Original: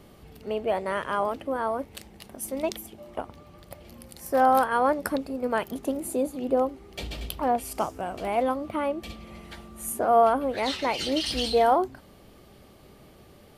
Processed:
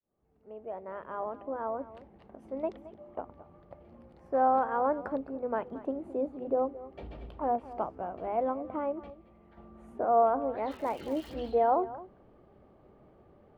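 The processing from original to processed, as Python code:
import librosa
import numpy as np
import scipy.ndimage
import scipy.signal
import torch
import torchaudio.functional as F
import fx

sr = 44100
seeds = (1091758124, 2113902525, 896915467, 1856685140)

p1 = fx.fade_in_head(x, sr, length_s=1.9)
p2 = scipy.signal.sosfilt(scipy.signal.butter(2, 1000.0, 'lowpass', fs=sr, output='sos'), p1)
p3 = fx.low_shelf(p2, sr, hz=380.0, db=-5.0)
p4 = fx.hum_notches(p3, sr, base_hz=50, count=5)
p5 = fx.level_steps(p4, sr, step_db=14, at=(9.08, 9.56), fade=0.02)
p6 = fx.dmg_crackle(p5, sr, seeds[0], per_s=fx.line((10.7, 150.0), (11.32, 470.0)), level_db=-39.0, at=(10.7, 11.32), fade=0.02)
p7 = p6 + fx.echo_single(p6, sr, ms=220, db=-16.5, dry=0)
y = p7 * 10.0 ** (-2.5 / 20.0)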